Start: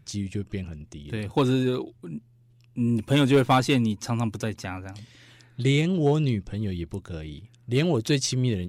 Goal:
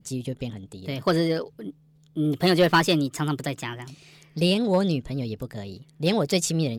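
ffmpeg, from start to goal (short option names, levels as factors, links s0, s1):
-af "adynamicequalizer=threshold=0.00794:dfrequency=1900:dqfactor=0.84:tfrequency=1900:tqfactor=0.84:attack=5:release=100:ratio=0.375:range=2:mode=boostabove:tftype=bell,asetrate=56448,aresample=44100"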